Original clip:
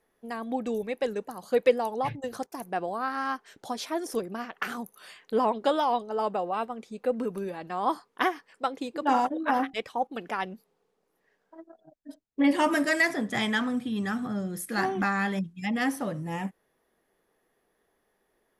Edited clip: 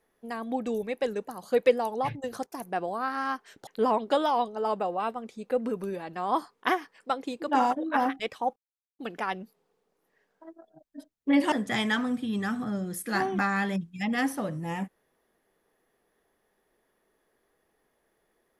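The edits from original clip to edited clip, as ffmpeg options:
-filter_complex "[0:a]asplit=4[s0][s1][s2][s3];[s0]atrim=end=3.672[s4];[s1]atrim=start=5.208:end=10.1,asetpts=PTS-STARTPTS,afade=t=out:st=4.888:d=0.004:c=hsin,apad=pad_dur=0.43[s5];[s2]atrim=start=10.1:end=12.632,asetpts=PTS-STARTPTS,afade=t=in:d=0.004:c=hsin[s6];[s3]atrim=start=13.148[s7];[s5][s6]concat=n=2:v=0:a=1[s8];[s4][s8]acrossfade=d=0.004:c1=hsin:c2=hsin[s9];[s9][s7]acrossfade=d=0.004:c1=hsin:c2=hsin"

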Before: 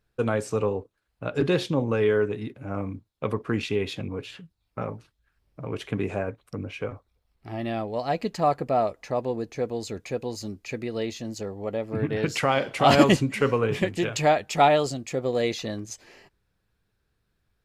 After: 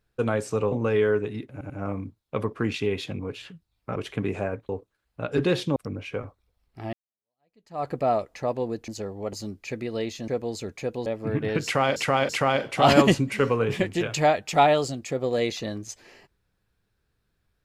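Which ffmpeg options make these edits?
-filter_complex "[0:a]asplit=14[s0][s1][s2][s3][s4][s5][s6][s7][s8][s9][s10][s11][s12][s13];[s0]atrim=end=0.722[s14];[s1]atrim=start=1.788:end=2.682[s15];[s2]atrim=start=2.588:end=2.682[s16];[s3]atrim=start=2.588:end=4.852[s17];[s4]atrim=start=5.708:end=6.442[s18];[s5]atrim=start=0.718:end=1.792[s19];[s6]atrim=start=6.438:end=7.61,asetpts=PTS-STARTPTS,afade=t=out:st=1.168:d=0.004:c=hsin[s20];[s7]atrim=start=7.61:end=9.562,asetpts=PTS-STARTPTS,afade=t=in:d=0.95:c=exp[s21];[s8]atrim=start=11.288:end=11.742[s22];[s9]atrim=start=10.338:end=11.292[s23];[s10]atrim=start=9.558:end=10.342[s24];[s11]atrim=start=11.738:end=12.642[s25];[s12]atrim=start=12.308:end=12.642[s26];[s13]atrim=start=12.308[s27];[s14][s15]acrossfade=d=0.004:c1=hsin:c2=hsin[s28];[s28][s16]acrossfade=d=0.004:c1=hsin:c2=hsin[s29];[s29][s17]acrossfade=d=0.004:c1=hsin:c2=hsin[s30];[s30][s18]acrossfade=d=0.004:c1=hsin:c2=hsin[s31];[s31][s19]acrossfade=d=0.004:c1=hsin:c2=hsin[s32];[s20][s21]concat=n=2:v=0:a=1[s33];[s32][s33]acrossfade=d=0.004:c1=hsin:c2=hsin[s34];[s34][s22]acrossfade=d=0.004:c1=hsin:c2=hsin[s35];[s35][s23]acrossfade=d=0.004:c1=hsin:c2=hsin[s36];[s36][s24]acrossfade=d=0.004:c1=hsin:c2=hsin[s37];[s37][s25]acrossfade=d=0.004:c1=hsin:c2=hsin[s38];[s38][s26]acrossfade=d=0.004:c1=hsin:c2=hsin[s39];[s39][s27]acrossfade=d=0.004:c1=hsin:c2=hsin"

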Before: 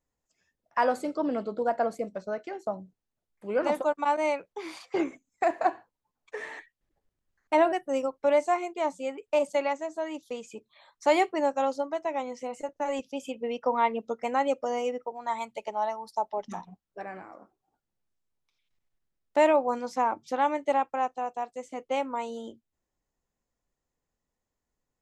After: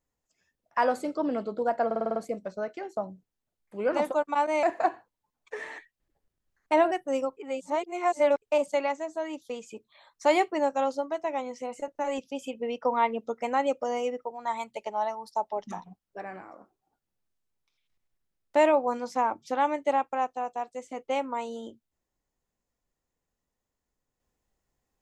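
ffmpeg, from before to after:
-filter_complex "[0:a]asplit=10[s0][s1][s2][s3][s4][s5][s6][s7][s8][s9];[s0]atrim=end=1.912[s10];[s1]atrim=start=1.858:end=1.912[s11];[s2]atrim=start=1.858:end=1.912[s12];[s3]atrim=start=1.858:end=1.912[s13];[s4]atrim=start=1.858:end=1.912[s14];[s5]atrim=start=1.858:end=1.912[s15];[s6]atrim=start=1.858:end=4.332[s16];[s7]atrim=start=5.438:end=8.182[s17];[s8]atrim=start=8.178:end=9.232,asetpts=PTS-STARTPTS,areverse[s18];[s9]atrim=start=9.228[s19];[s10][s11]acrossfade=d=0.004:c1=hsin:c2=hsin[s20];[s20][s12]acrossfade=d=0.004:c1=hsin:c2=hsin[s21];[s21][s13]acrossfade=d=0.004:c1=hsin:c2=hsin[s22];[s22][s14]acrossfade=d=0.004:c1=hsin:c2=hsin[s23];[s23][s15]acrossfade=d=0.004:c1=hsin:c2=hsin[s24];[s24][s16]acrossfade=d=0.004:c1=hsin:c2=hsin[s25];[s25][s17]acrossfade=d=0.004:c1=hsin:c2=hsin[s26];[s26][s18]acrossfade=d=0.004:c1=hsin:c2=hsin[s27];[s27][s19]acrossfade=d=0.004:c1=hsin:c2=hsin"

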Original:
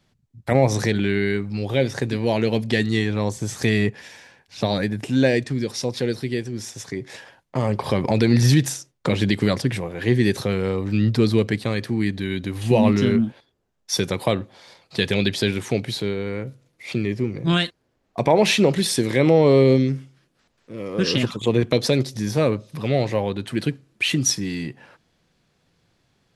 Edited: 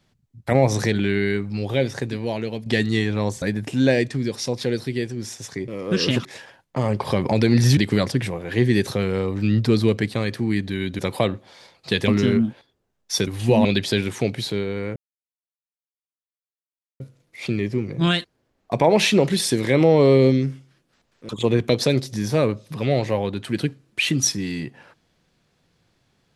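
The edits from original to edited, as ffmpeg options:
-filter_complex "[0:a]asplit=12[s0][s1][s2][s3][s4][s5][s6][s7][s8][s9][s10][s11];[s0]atrim=end=2.66,asetpts=PTS-STARTPTS,afade=t=out:st=1.65:d=1.01:silence=0.316228[s12];[s1]atrim=start=2.66:end=3.422,asetpts=PTS-STARTPTS,afade=t=in:d=0.004:c=hsin:silence=0.316228[s13];[s2]atrim=start=4.778:end=7.042[s14];[s3]atrim=start=20.748:end=21.322[s15];[s4]atrim=start=7.038:end=8.562[s16];[s5]atrim=start=9.268:end=12.492[s17];[s6]atrim=start=14.058:end=15.152[s18];[s7]atrim=start=12.868:end=14.062[s19];[s8]atrim=start=12.488:end=12.872[s20];[s9]atrim=start=15.148:end=16.46,asetpts=PTS-STARTPTS,afade=t=out:st=1.308:d=0.004:c=hsin,apad=pad_dur=2.04[s21];[s10]atrim=start=16.46:end=20.752,asetpts=PTS-STARTPTS,afade=t=in:d=0.004:c=hsin[s22];[s11]atrim=start=21.318[s23];[s12][s13]concat=n=2:v=0:a=1[s24];[s24][s14]acrossfade=d=0.004:c1=hsin:c2=hsin[s25];[s25][s15]acrossfade=d=0.004:c1=hsin:c2=hsin[s26];[s26][s16]acrossfade=d=0.004:c1=hsin:c2=hsin[s27];[s27][s17]acrossfade=d=0.004:c1=hsin:c2=hsin[s28];[s28][s18]acrossfade=d=0.004:c1=hsin:c2=hsin[s29];[s29][s19]acrossfade=d=0.004:c1=hsin:c2=hsin[s30];[s30][s20]acrossfade=d=0.004:c1=hsin:c2=hsin[s31];[s21][s22]concat=n=2:v=0:a=1[s32];[s31][s32]acrossfade=d=0.004:c1=hsin:c2=hsin[s33];[s33][s23]acrossfade=d=0.004:c1=hsin:c2=hsin"

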